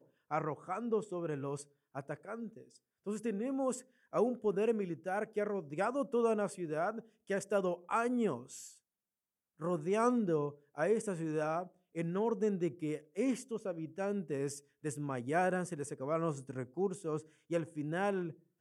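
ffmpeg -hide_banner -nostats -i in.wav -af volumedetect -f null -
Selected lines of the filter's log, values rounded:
mean_volume: -36.3 dB
max_volume: -19.0 dB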